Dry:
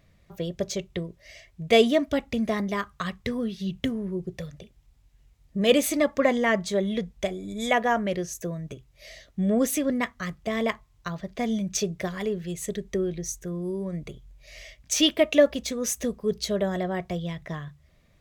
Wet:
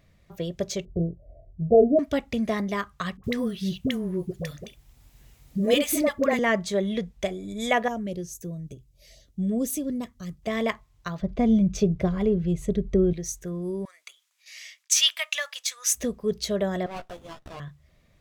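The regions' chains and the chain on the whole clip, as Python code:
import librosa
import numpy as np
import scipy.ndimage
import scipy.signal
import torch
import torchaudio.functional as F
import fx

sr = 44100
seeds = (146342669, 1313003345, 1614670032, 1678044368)

y = fx.chain(x, sr, fx.ellip_lowpass(hz=710.0, order=4, stop_db=50),
    fx.low_shelf(hz=160.0, db=10.0),
    fx.doubler(ms=24.0, db=-5.0), at=(0.85, 1.99))
y = fx.chain(y, sr, fx.high_shelf(hz=11000.0, db=11.0),
    fx.dispersion(late='highs', ms=67.0, hz=640.0),
    fx.band_squash(depth_pct=40), at=(3.17, 6.39))
y = fx.chain(y, sr, fx.peak_eq(hz=1500.0, db=-14.5, octaves=2.8),
    fx.filter_lfo_notch(shape='sine', hz=4.8, low_hz=600.0, high_hz=2100.0, q=1.8), at=(7.88, 10.43))
y = fx.chain(y, sr, fx.tilt_eq(slope=-3.5),
    fx.notch(hz=1800.0, q=7.1), at=(11.22, 13.13))
y = fx.chain(y, sr, fx.gate_hold(open_db=-42.0, close_db=-48.0, hold_ms=71.0, range_db=-21, attack_ms=1.4, release_ms=100.0),
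    fx.highpass(hz=1100.0, slope=24),
    fx.peak_eq(hz=8300.0, db=6.0, octaves=2.3), at=(13.85, 15.93))
y = fx.chain(y, sr, fx.highpass(hz=760.0, slope=12),
    fx.doubler(ms=15.0, db=-4.5),
    fx.running_max(window=17), at=(16.86, 17.6))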